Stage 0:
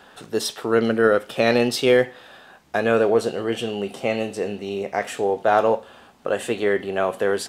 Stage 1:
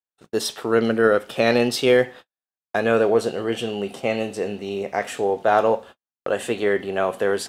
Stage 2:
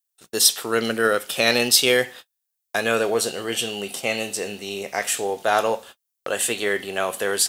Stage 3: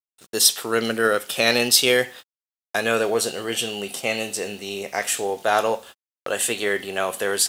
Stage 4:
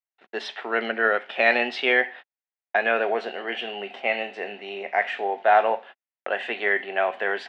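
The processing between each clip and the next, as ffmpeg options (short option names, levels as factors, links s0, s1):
-af "agate=range=0.00158:threshold=0.0141:ratio=16:detection=peak"
-af "crystalizer=i=8.5:c=0,volume=0.531"
-af "acrusher=bits=8:mix=0:aa=0.5"
-af "highpass=f=280:w=0.5412,highpass=f=280:w=1.3066,equalizer=f=310:t=q:w=4:g=-9,equalizer=f=480:t=q:w=4:g=-8,equalizer=f=730:t=q:w=4:g=5,equalizer=f=1200:t=q:w=4:g=-7,equalizer=f=1900:t=q:w=4:g=4,lowpass=f=2500:w=0.5412,lowpass=f=2500:w=1.3066,volume=1.19"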